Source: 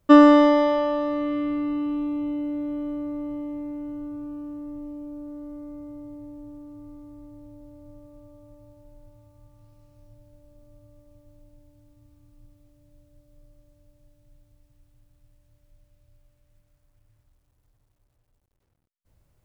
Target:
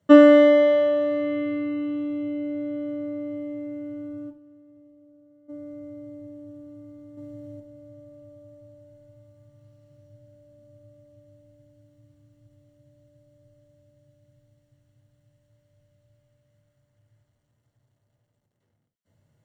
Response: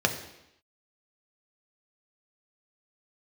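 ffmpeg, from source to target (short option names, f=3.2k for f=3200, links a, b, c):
-filter_complex "[0:a]asplit=3[a][b][c];[a]afade=t=out:st=4.29:d=0.02[d];[b]agate=range=-33dB:threshold=-26dB:ratio=3:detection=peak,afade=t=in:st=4.29:d=0.02,afade=t=out:st=5.48:d=0.02[e];[c]afade=t=in:st=5.48:d=0.02[f];[d][e][f]amix=inputs=3:normalize=0,asettb=1/sr,asplit=3[g][h][i];[g]atrim=end=7.174[j];[h]atrim=start=7.17:end=7.6,asetpts=PTS-STARTPTS,afade=t=in:d=0.004:c=qsin,afade=t=out:st=0.426:d=0.004:c=qsin,acontrast=37[k];[i]atrim=start=7.596[l];[j][k]acrossfade=d=0.004:c1=hsin:c2=qsin[m];[m][l]acrossfade=d=0.004:c1=qsin:c2=hsin[n];[1:a]atrim=start_sample=2205,atrim=end_sample=4410,asetrate=52920,aresample=44100[o];[n][o]afir=irnorm=-1:irlink=0,volume=-10.5dB"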